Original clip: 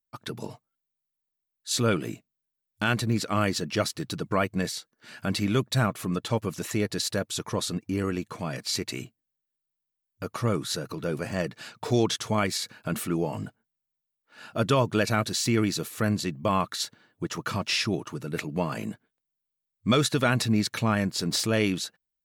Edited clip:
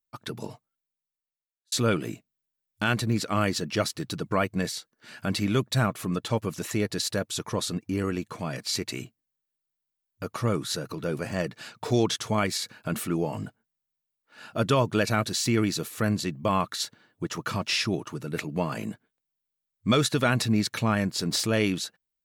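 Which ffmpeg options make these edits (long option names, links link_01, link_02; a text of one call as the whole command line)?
ffmpeg -i in.wav -filter_complex "[0:a]asplit=2[link_01][link_02];[link_01]atrim=end=1.72,asetpts=PTS-STARTPTS,afade=type=out:start_time=0.45:duration=1.27[link_03];[link_02]atrim=start=1.72,asetpts=PTS-STARTPTS,afade=type=in:duration=0.004:curve=hsin[link_04];[link_03][link_04]concat=n=2:v=0:a=1" out.wav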